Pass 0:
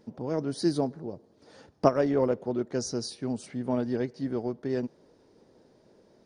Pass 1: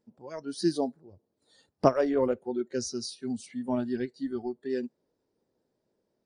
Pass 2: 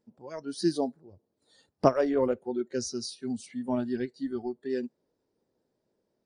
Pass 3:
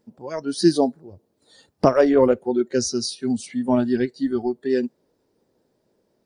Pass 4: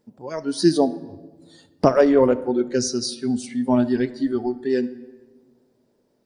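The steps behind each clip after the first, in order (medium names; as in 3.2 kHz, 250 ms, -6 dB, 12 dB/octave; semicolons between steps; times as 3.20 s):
spectral noise reduction 18 dB
no audible change
loudness maximiser +11 dB; trim -1 dB
reverberation RT60 1.3 s, pre-delay 7 ms, DRR 14 dB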